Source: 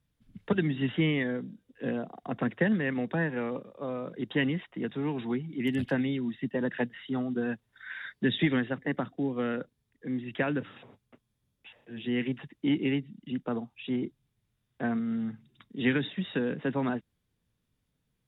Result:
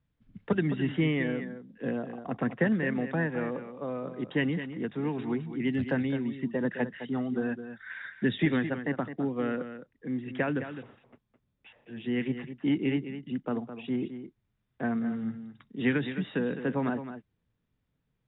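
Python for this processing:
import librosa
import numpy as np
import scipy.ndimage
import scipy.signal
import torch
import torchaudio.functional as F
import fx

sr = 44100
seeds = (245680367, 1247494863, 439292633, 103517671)

p1 = scipy.signal.sosfilt(scipy.signal.butter(2, 2700.0, 'lowpass', fs=sr, output='sos'), x)
y = p1 + fx.echo_single(p1, sr, ms=212, db=-10.5, dry=0)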